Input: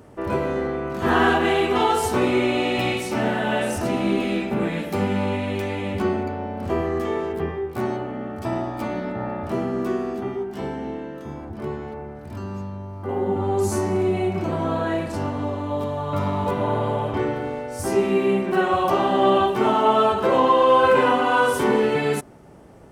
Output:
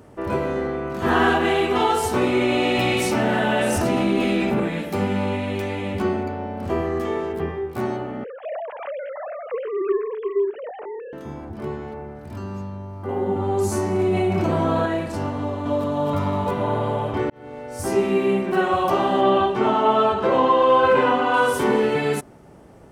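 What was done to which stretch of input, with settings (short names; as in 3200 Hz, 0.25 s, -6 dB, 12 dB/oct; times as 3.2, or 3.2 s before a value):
2.41–4.6 fast leveller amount 70%
8.24–11.13 sine-wave speech
13.99–14.86 fast leveller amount 70%
15.39–15.89 echo throw 0.26 s, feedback 35%, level -0.5 dB
17.3–17.83 fade in
19.21–21.34 air absorption 70 m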